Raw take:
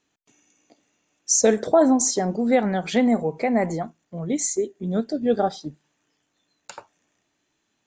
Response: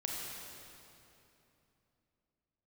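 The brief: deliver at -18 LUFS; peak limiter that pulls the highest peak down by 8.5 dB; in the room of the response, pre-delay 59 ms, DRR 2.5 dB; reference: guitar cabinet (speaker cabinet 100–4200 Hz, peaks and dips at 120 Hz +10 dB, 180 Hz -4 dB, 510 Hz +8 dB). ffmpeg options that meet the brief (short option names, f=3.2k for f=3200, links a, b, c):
-filter_complex "[0:a]alimiter=limit=-14.5dB:level=0:latency=1,asplit=2[a][b];[1:a]atrim=start_sample=2205,adelay=59[c];[b][c]afir=irnorm=-1:irlink=0,volume=-5dB[d];[a][d]amix=inputs=2:normalize=0,highpass=100,equalizer=f=120:t=q:w=4:g=10,equalizer=f=180:t=q:w=4:g=-4,equalizer=f=510:t=q:w=4:g=8,lowpass=f=4.2k:w=0.5412,lowpass=f=4.2k:w=1.3066,volume=4dB"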